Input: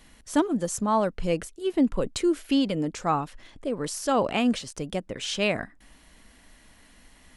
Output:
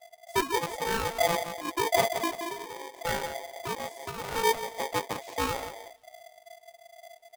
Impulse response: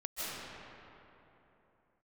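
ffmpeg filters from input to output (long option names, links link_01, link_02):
-filter_complex "[0:a]tremolo=f=55:d=0.519,asettb=1/sr,asplit=3[link_01][link_02][link_03];[link_01]atrim=end=2.394[link_04];[link_02]atrim=start=2.39:end=3,asetpts=PTS-STARTPTS,afade=type=in:duration=0.004:curve=qsin,afade=type=out:start_time=0.606:duration=0.004:curve=qsin,acompressor=threshold=-39dB:ratio=4[link_05];[link_03]atrim=start=2.996[link_06];[link_04][link_05]acrossfade=duration=0.004:curve1=hsin:curve2=qsin[link_07];[link_07][link_06]acrossfade=duration=0.004:curve1=qsin:curve2=hsin,bass=frequency=250:gain=14,treble=frequency=4000:gain=8,aecho=1:1:174|348|522|696|870:0.355|0.149|0.0626|0.0263|0.011,asettb=1/sr,asplit=3[link_08][link_09][link_10];[link_08]atrim=end=3.744[link_11];[link_09]atrim=start=3.74:end=4.25,asetpts=PTS-STARTPTS,afade=type=in:duration=0.004:curve=qsin,afade=type=out:start_time=0.506:duration=0.004:curve=qsin,acrossover=split=120[link_12][link_13];[link_13]acompressor=threshold=-26dB:ratio=10[link_14];[link_12][link_14]amix=inputs=2:normalize=0[link_15];[link_10]atrim=start=4.246[link_16];[link_11][link_15]acrossfade=duration=0.004:curve1=hsin:curve2=qsin[link_17];[link_17][link_16]acrossfade=duration=0.004:curve1=qsin:curve2=hsin,asettb=1/sr,asplit=3[link_18][link_19][link_20];[link_18]atrim=end=4.954[link_21];[link_19]atrim=start=4.95:end=5.47,asetpts=PTS-STARTPTS,afade=type=in:duration=0.004:curve=qsin,afade=type=out:start_time=0.516:duration=0.004:curve=qsin,equalizer=frequency=370:width=1.2:gain=6[link_22];[link_20]atrim=start=5.466[link_23];[link_21][link_22]acrossfade=duration=0.004:curve1=hsin:curve2=qsin[link_24];[link_24][link_23]acrossfade=duration=0.004:curve1=qsin:curve2=hsin,afwtdn=0.0501,flanger=delay=1.5:depth=9.3:regen=-44:speed=1.3:shape=sinusoidal,aeval=exprs='val(0)*sgn(sin(2*PI*680*n/s))':channel_layout=same,volume=-3.5dB"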